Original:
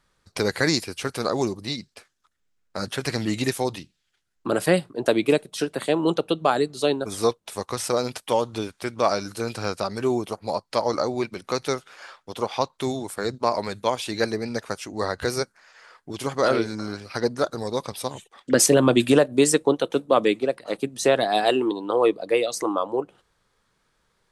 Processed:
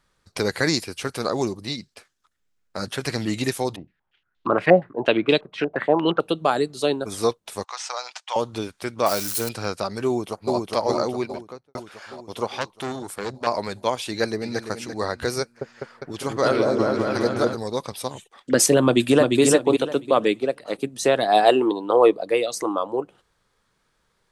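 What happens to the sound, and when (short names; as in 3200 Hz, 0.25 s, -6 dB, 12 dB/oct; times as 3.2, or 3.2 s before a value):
3.76–6.2 stepped low-pass 8.5 Hz 710–3600 Hz
7.64–8.36 elliptic band-pass 780–6800 Hz, stop band 70 dB
9.06–9.49 switching spikes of -19 dBFS
10.06–10.56 echo throw 0.41 s, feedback 60%, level -1.5 dB
11.11–11.75 studio fade out
12.48–13.47 core saturation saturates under 2400 Hz
14.07–14.62 echo throw 0.34 s, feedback 30%, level -9 dB
15.41–17.55 repeats that get brighter 0.202 s, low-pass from 750 Hz, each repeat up 1 oct, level 0 dB
18.85–19.41 echo throw 0.35 s, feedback 25%, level -3.5 dB
21.27–22.23 dynamic EQ 700 Hz, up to +6 dB, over -32 dBFS, Q 0.72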